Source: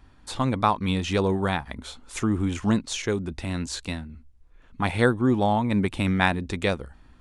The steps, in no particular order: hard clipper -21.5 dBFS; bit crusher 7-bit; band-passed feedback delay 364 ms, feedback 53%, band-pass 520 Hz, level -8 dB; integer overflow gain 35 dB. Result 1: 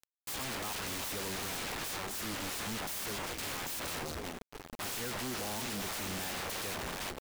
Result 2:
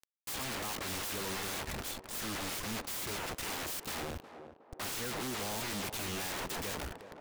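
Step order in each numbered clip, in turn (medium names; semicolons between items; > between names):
band-passed feedback delay > hard clipper > integer overflow > bit crusher; hard clipper > integer overflow > bit crusher > band-passed feedback delay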